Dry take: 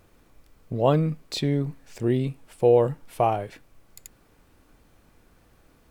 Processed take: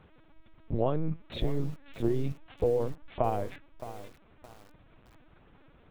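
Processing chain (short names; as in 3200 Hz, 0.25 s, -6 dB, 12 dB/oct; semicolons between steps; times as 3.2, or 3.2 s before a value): dynamic EQ 2700 Hz, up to -6 dB, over -41 dBFS, Q 0.72; compressor 16:1, threshold -23 dBFS, peak gain reduction 10.5 dB; LPC vocoder at 8 kHz pitch kept; lo-fi delay 0.618 s, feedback 35%, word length 7-bit, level -13 dB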